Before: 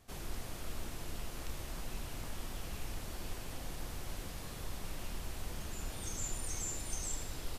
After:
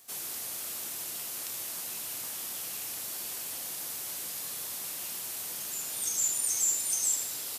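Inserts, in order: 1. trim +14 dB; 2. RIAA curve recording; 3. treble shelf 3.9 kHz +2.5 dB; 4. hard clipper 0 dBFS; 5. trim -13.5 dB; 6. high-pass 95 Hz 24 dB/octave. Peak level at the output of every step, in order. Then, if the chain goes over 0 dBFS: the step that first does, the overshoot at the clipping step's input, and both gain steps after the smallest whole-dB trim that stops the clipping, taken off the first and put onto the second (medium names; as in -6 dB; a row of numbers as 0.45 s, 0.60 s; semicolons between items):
-10.0 dBFS, -4.5 dBFS, -2.5 dBFS, -2.5 dBFS, -16.0 dBFS, -16.0 dBFS; nothing clips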